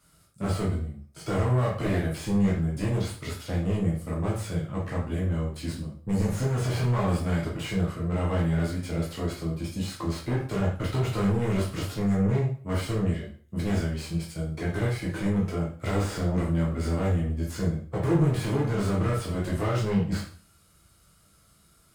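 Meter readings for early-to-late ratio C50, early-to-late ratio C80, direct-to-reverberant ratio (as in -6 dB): 5.0 dB, 10.0 dB, -4.5 dB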